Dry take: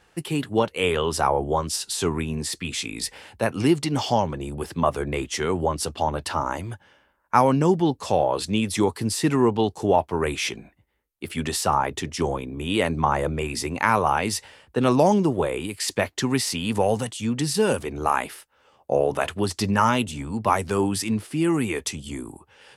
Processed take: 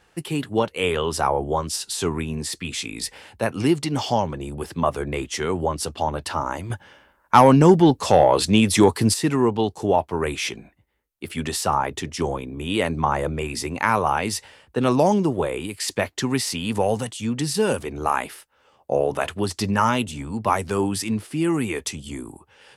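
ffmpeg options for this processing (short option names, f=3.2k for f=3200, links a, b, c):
-filter_complex "[0:a]asettb=1/sr,asplit=3[a][b][c];[a]atrim=end=6.704[d];[b]atrim=start=6.7:end=9.14,asetpts=PTS-STARTPTS,afade=t=in:d=0.004:c=qsin,afade=t=out:st=2.436:d=0.004:c=qsin,acontrast=86[e];[c]atrim=start=9.136[f];[d][e]acrossfade=d=0.004:c1=hsin:c2=qsin[g];[g][f]acrossfade=d=0.004:c1=qsin:c2=hsin"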